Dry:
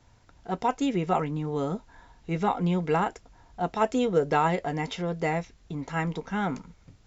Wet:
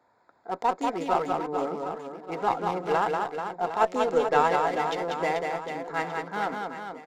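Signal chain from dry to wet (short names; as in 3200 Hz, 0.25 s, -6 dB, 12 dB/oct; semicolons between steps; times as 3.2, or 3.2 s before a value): Wiener smoothing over 15 samples; HPF 460 Hz 12 dB/oct; in parallel at -8 dB: one-sided clip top -32 dBFS; on the sum: reverse bouncing-ball echo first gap 0.19 s, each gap 1.3×, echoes 5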